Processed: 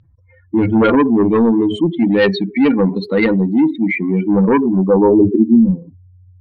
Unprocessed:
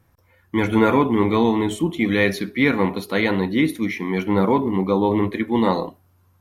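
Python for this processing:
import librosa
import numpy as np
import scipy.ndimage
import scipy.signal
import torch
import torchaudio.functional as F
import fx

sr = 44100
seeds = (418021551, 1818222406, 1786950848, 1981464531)

y = fx.spec_expand(x, sr, power=2.4)
y = fx.fold_sine(y, sr, drive_db=5, ceiling_db=-6.5)
y = fx.filter_sweep_lowpass(y, sr, from_hz=3900.0, to_hz=110.0, start_s=4.38, end_s=5.83, q=2.2)
y = y * 10.0 ** (-1.0 / 20.0)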